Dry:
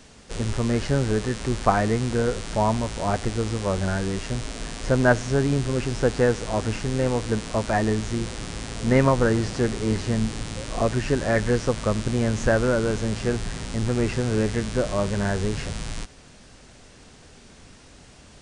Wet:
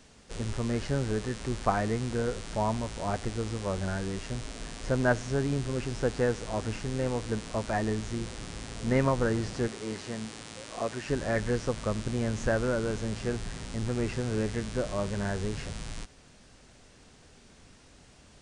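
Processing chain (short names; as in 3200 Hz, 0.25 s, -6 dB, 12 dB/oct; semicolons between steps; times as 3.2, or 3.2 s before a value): 9.68–11.09 HPF 370 Hz 6 dB/oct; gain -7 dB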